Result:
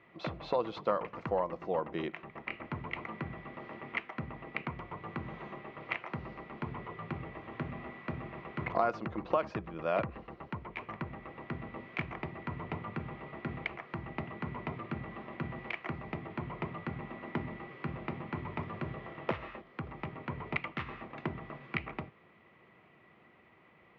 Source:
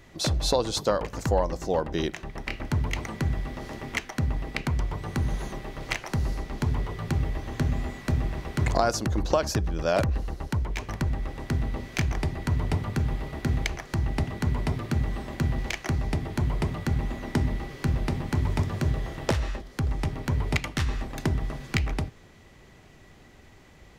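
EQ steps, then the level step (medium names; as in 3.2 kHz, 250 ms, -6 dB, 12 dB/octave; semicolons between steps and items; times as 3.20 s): cabinet simulation 270–2300 Hz, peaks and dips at 270 Hz -10 dB, 410 Hz -7 dB, 580 Hz -6 dB, 820 Hz -7 dB, 1.7 kHz -8 dB; band-stop 1.5 kHz, Q 14; 0.0 dB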